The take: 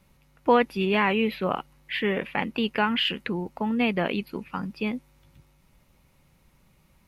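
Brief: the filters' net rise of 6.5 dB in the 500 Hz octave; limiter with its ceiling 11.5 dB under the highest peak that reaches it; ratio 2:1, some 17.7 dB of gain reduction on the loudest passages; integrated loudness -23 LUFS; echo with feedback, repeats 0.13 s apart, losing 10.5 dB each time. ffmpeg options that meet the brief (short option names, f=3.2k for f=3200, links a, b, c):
-af "equalizer=f=500:t=o:g=7.5,acompressor=threshold=-43dB:ratio=2,alimiter=level_in=7dB:limit=-24dB:level=0:latency=1,volume=-7dB,aecho=1:1:130|260|390:0.299|0.0896|0.0269,volume=17.5dB"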